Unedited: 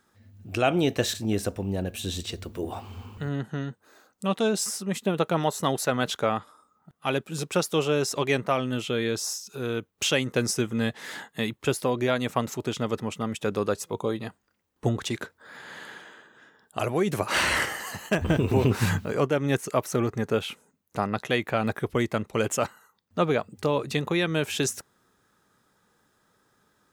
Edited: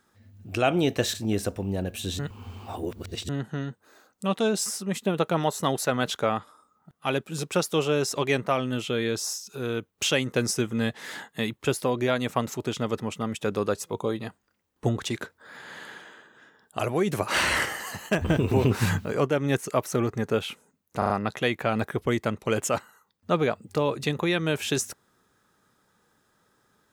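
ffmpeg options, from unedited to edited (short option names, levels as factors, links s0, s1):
-filter_complex "[0:a]asplit=6[s0][s1][s2][s3][s4][s5];[s0]atrim=end=2.192[s6];[s1]atrim=start=2.188:end=3.292,asetpts=PTS-STARTPTS,areverse[s7];[s2]atrim=start=3.288:end=21.022[s8];[s3]atrim=start=20.978:end=21.022[s9];[s4]atrim=start=20.978:end=21.022[s10];[s5]atrim=start=20.978[s11];[s6][s7]acrossfade=d=0.004:c1=hsin:c2=hsin[s12];[s12][s8]acrossfade=d=0.004:c1=hsin:c2=hsin[s13];[s13][s9]acrossfade=d=0.004:c1=hsin:c2=hsin[s14];[s14][s10]acrossfade=d=0.004:c1=hsin:c2=hsin[s15];[s15][s11]acrossfade=d=0.004:c1=hsin:c2=hsin"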